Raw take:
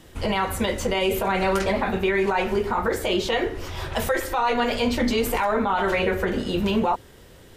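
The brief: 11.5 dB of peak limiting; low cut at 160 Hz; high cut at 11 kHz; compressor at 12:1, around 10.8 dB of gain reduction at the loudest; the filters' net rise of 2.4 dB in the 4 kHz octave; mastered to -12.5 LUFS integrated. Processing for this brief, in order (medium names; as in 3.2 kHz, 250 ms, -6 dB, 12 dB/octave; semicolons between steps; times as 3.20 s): high-pass 160 Hz; low-pass 11 kHz; peaking EQ 4 kHz +3.5 dB; compression 12:1, threshold -29 dBFS; trim +24 dB; peak limiter -4 dBFS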